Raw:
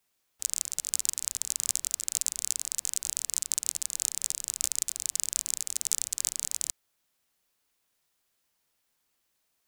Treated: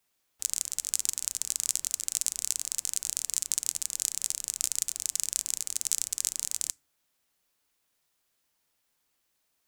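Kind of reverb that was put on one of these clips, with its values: FDN reverb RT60 0.43 s, low-frequency decay 1.3×, high-frequency decay 0.5×, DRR 19 dB

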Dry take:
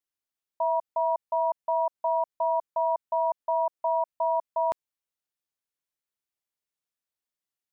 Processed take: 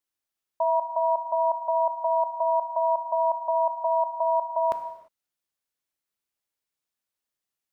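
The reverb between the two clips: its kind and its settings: non-linear reverb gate 0.37 s falling, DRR 7.5 dB; gain +2.5 dB

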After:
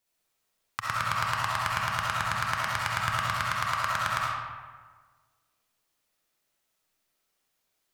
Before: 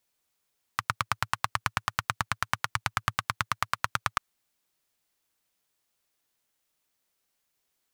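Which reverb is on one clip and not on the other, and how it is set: digital reverb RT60 1.5 s, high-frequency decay 0.6×, pre-delay 25 ms, DRR -5.5 dB; gain -4 dB

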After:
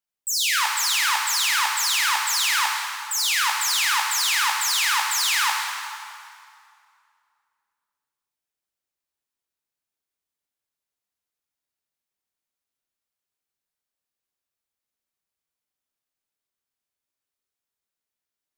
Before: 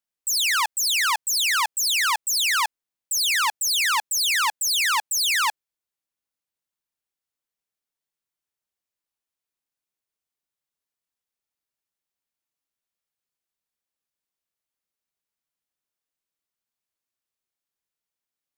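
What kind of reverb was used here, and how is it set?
plate-style reverb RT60 2.4 s, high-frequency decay 0.8×, DRR -0.5 dB; gain -2.5 dB

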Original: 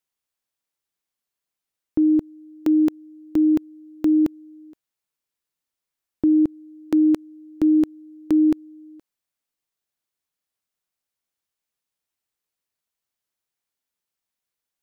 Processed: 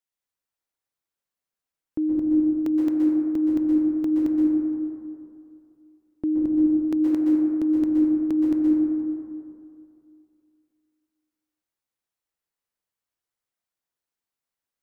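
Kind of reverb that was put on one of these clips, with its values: plate-style reverb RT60 2.5 s, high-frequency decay 0.25×, pre-delay 0.11 s, DRR -3.5 dB; gain -7 dB

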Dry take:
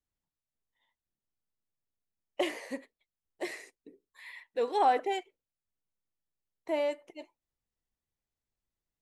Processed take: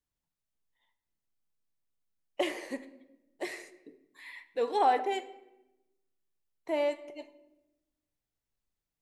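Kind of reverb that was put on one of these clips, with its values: shoebox room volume 400 m³, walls mixed, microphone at 0.33 m

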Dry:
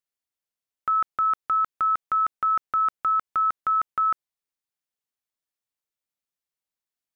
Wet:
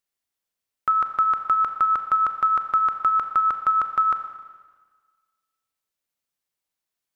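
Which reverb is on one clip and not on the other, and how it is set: Schroeder reverb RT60 1.5 s, combs from 29 ms, DRR 7 dB; gain +4 dB

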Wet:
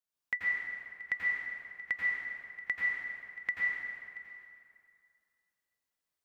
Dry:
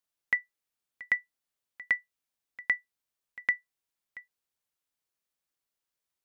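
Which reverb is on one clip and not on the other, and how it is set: plate-style reverb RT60 2.3 s, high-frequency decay 0.7×, pre-delay 75 ms, DRR -5.5 dB; gain -7 dB

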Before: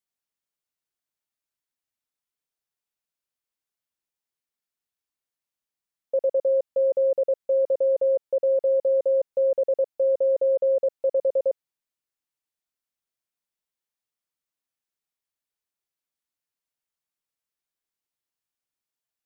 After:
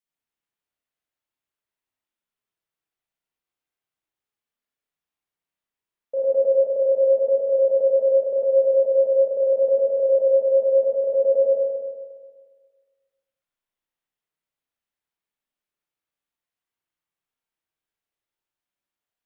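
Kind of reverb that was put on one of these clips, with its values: spring tank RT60 1.6 s, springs 31/50/59 ms, chirp 55 ms, DRR -7 dB; gain -4.5 dB

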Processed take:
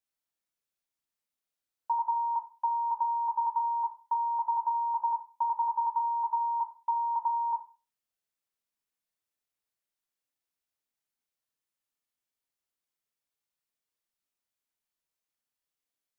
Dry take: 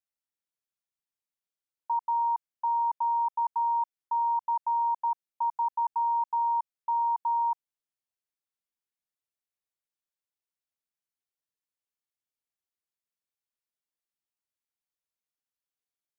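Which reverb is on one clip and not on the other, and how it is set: Schroeder reverb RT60 0.32 s, combs from 25 ms, DRR 3 dB; gain +1 dB

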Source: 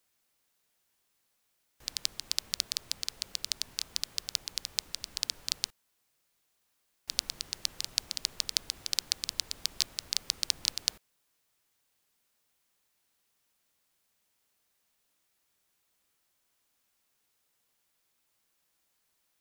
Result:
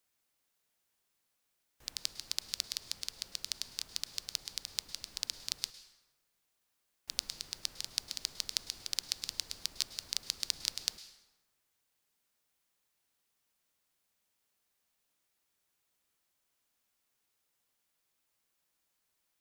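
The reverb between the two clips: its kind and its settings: plate-style reverb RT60 1.2 s, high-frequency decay 0.6×, pre-delay 95 ms, DRR 13 dB; gain -4.5 dB

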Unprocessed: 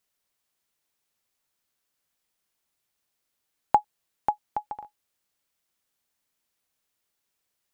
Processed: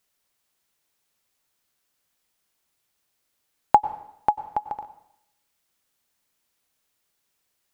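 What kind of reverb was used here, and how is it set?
plate-style reverb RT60 0.76 s, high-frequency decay 1×, pre-delay 85 ms, DRR 14.5 dB; gain +4.5 dB

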